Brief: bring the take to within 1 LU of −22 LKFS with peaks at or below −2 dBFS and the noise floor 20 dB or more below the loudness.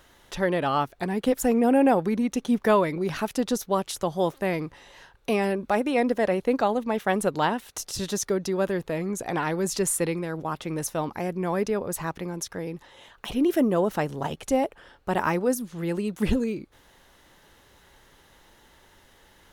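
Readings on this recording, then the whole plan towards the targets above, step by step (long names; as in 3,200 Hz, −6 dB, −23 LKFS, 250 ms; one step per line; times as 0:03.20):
integrated loudness −26.0 LKFS; sample peak −9.0 dBFS; target loudness −22.0 LKFS
→ level +4 dB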